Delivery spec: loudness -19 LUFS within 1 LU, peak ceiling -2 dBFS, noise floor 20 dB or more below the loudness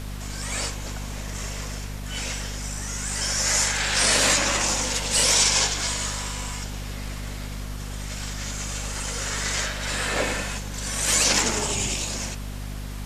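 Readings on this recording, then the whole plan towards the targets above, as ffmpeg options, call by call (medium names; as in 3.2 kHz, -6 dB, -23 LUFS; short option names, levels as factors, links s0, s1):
hum 50 Hz; highest harmonic 250 Hz; hum level -31 dBFS; noise floor -33 dBFS; noise floor target -44 dBFS; loudness -23.5 LUFS; peak level -7.0 dBFS; loudness target -19.0 LUFS
-> -af "bandreject=f=50:t=h:w=6,bandreject=f=100:t=h:w=6,bandreject=f=150:t=h:w=6,bandreject=f=200:t=h:w=6,bandreject=f=250:t=h:w=6"
-af "afftdn=nr=11:nf=-33"
-af "volume=1.68"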